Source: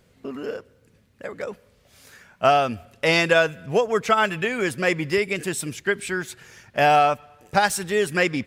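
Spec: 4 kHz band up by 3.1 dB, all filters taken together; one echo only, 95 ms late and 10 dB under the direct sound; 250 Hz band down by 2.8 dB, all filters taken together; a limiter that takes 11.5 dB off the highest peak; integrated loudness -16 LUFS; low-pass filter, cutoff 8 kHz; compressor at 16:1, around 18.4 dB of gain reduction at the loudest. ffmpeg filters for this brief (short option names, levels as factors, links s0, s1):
-af "lowpass=8000,equalizer=f=250:t=o:g=-4.5,equalizer=f=4000:t=o:g=4.5,acompressor=threshold=0.0282:ratio=16,alimiter=level_in=1.41:limit=0.0631:level=0:latency=1,volume=0.708,aecho=1:1:95:0.316,volume=12.6"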